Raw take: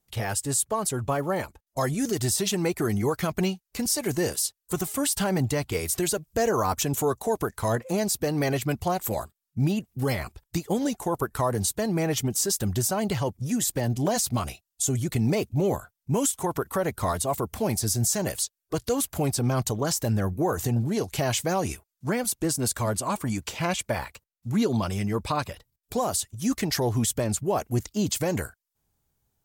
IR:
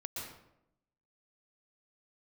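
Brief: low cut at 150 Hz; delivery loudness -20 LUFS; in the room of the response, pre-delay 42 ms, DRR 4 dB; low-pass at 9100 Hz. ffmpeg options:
-filter_complex "[0:a]highpass=150,lowpass=9.1k,asplit=2[a][b];[1:a]atrim=start_sample=2205,adelay=42[c];[b][c]afir=irnorm=-1:irlink=0,volume=-4dB[d];[a][d]amix=inputs=2:normalize=0,volume=6.5dB"

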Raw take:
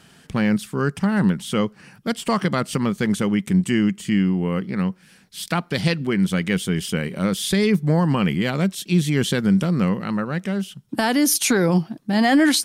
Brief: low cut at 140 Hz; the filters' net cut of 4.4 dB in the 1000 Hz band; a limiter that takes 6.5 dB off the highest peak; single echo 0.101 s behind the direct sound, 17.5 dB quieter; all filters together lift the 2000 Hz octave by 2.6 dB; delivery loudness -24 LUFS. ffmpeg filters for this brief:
-af "highpass=140,equalizer=f=1k:t=o:g=-8,equalizer=f=2k:t=o:g=5.5,alimiter=limit=-12dB:level=0:latency=1,aecho=1:1:101:0.133,volume=-1dB"

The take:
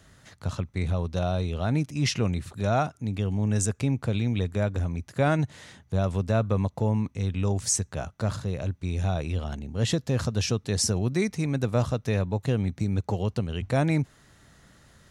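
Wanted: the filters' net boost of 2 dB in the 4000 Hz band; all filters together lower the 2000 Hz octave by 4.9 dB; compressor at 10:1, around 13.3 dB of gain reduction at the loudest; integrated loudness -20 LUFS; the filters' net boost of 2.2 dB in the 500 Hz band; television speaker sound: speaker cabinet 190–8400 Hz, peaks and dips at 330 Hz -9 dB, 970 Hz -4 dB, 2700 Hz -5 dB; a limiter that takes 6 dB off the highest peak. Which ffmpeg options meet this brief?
-af "equalizer=f=500:t=o:g=4.5,equalizer=f=2k:t=o:g=-6.5,equalizer=f=4k:t=o:g=5,acompressor=threshold=-31dB:ratio=10,alimiter=level_in=2.5dB:limit=-24dB:level=0:latency=1,volume=-2.5dB,highpass=f=190:w=0.5412,highpass=f=190:w=1.3066,equalizer=f=330:t=q:w=4:g=-9,equalizer=f=970:t=q:w=4:g=-4,equalizer=f=2.7k:t=q:w=4:g=-5,lowpass=f=8.4k:w=0.5412,lowpass=f=8.4k:w=1.3066,volume=22dB"

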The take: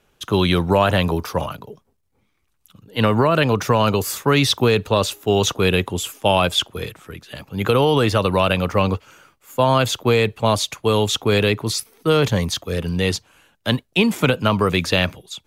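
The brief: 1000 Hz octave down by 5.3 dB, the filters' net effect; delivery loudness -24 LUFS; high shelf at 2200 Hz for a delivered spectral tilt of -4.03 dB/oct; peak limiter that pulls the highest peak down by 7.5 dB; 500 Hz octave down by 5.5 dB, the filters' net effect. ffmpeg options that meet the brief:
-af "equalizer=f=500:t=o:g=-5.5,equalizer=f=1k:t=o:g=-6,highshelf=f=2.2k:g=4.5,volume=-3dB,alimiter=limit=-12dB:level=0:latency=1"

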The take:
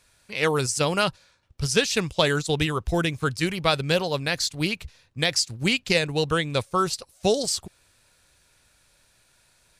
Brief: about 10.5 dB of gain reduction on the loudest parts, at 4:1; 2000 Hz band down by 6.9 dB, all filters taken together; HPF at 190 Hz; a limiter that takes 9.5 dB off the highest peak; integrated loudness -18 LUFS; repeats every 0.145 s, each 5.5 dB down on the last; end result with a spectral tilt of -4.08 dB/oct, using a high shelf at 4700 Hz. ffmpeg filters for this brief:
-af "highpass=190,equalizer=f=2k:t=o:g=-7.5,highshelf=f=4.7k:g=-8.5,acompressor=threshold=-30dB:ratio=4,alimiter=level_in=1.5dB:limit=-24dB:level=0:latency=1,volume=-1.5dB,aecho=1:1:145|290|435|580|725|870|1015:0.531|0.281|0.149|0.079|0.0419|0.0222|0.0118,volume=18dB"

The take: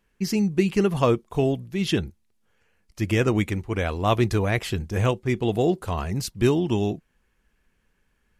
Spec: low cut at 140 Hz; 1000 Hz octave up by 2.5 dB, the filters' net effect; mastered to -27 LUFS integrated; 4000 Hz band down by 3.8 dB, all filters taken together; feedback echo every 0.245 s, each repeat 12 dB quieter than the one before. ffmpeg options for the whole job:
-af "highpass=140,equalizer=f=1k:t=o:g=3.5,equalizer=f=4k:t=o:g=-5.5,aecho=1:1:245|490|735:0.251|0.0628|0.0157,volume=-2.5dB"

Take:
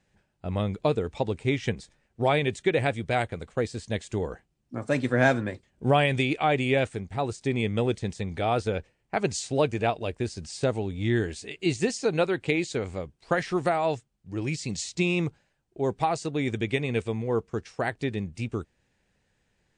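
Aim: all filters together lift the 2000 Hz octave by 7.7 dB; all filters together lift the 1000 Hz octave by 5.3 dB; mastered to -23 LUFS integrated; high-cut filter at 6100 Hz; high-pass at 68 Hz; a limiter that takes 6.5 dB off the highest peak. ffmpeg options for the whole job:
-af "highpass=68,lowpass=6.1k,equalizer=f=1k:t=o:g=6,equalizer=f=2k:t=o:g=8,volume=2.5dB,alimiter=limit=-6.5dB:level=0:latency=1"

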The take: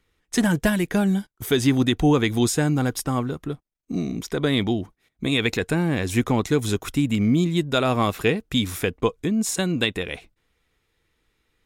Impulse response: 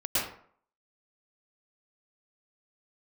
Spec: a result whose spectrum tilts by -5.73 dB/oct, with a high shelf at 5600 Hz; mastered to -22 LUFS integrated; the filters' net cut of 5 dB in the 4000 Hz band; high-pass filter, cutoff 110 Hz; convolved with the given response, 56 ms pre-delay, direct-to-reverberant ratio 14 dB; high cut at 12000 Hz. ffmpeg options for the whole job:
-filter_complex "[0:a]highpass=110,lowpass=12k,equalizer=f=4k:t=o:g=-3,highshelf=f=5.6k:g=-9,asplit=2[a][b];[1:a]atrim=start_sample=2205,adelay=56[c];[b][c]afir=irnorm=-1:irlink=0,volume=-23.5dB[d];[a][d]amix=inputs=2:normalize=0,volume=1.5dB"

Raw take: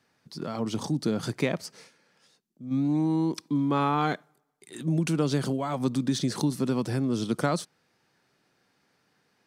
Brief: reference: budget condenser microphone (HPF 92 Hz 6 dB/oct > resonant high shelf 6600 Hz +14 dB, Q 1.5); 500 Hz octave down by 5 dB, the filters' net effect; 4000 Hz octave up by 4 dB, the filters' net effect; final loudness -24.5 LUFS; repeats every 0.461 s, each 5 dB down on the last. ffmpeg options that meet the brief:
-af "highpass=f=92:p=1,equalizer=f=500:t=o:g=-6.5,equalizer=f=4k:t=o:g=7.5,highshelf=f=6.6k:t=q:w=1.5:g=14,aecho=1:1:461|922|1383|1844|2305|2766|3227:0.562|0.315|0.176|0.0988|0.0553|0.031|0.0173,volume=3.5dB"

